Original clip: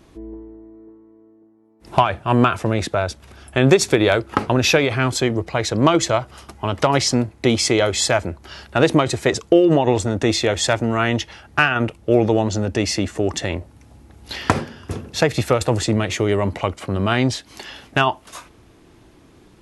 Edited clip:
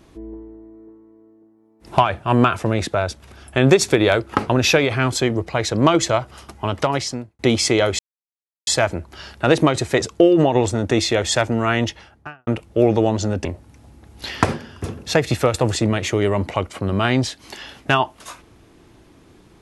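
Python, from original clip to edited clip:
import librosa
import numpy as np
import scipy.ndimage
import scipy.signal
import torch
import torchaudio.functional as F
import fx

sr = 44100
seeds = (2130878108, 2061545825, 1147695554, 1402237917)

y = fx.studio_fade_out(x, sr, start_s=11.13, length_s=0.66)
y = fx.edit(y, sr, fx.fade_out_span(start_s=6.67, length_s=0.72),
    fx.insert_silence(at_s=7.99, length_s=0.68),
    fx.cut(start_s=12.77, length_s=0.75), tone=tone)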